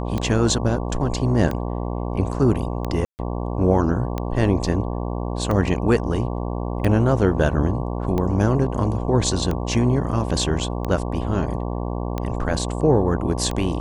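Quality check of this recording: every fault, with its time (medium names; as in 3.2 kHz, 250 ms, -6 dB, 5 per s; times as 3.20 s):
buzz 60 Hz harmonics 19 -26 dBFS
tick 45 rpm -13 dBFS
3.05–3.19 s: dropout 139 ms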